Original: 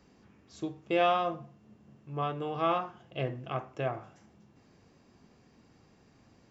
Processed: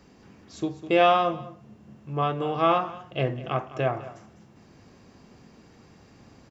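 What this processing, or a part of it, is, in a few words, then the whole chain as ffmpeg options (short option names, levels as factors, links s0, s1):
ducked delay: -filter_complex "[0:a]asplit=3[s0][s1][s2];[s1]adelay=202,volume=0.708[s3];[s2]apad=whole_len=295705[s4];[s3][s4]sidechaincompress=threshold=0.00891:ratio=12:attack=8.4:release=751[s5];[s0][s5]amix=inputs=2:normalize=0,volume=2.24"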